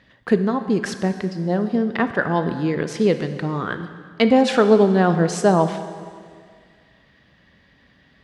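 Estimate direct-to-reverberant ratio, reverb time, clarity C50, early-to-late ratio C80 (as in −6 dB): 9.0 dB, 2.0 s, 10.5 dB, 11.5 dB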